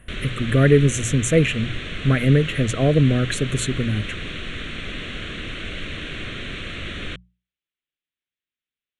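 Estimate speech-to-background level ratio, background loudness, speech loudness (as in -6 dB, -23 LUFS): 11.0 dB, -31.0 LUFS, -20.0 LUFS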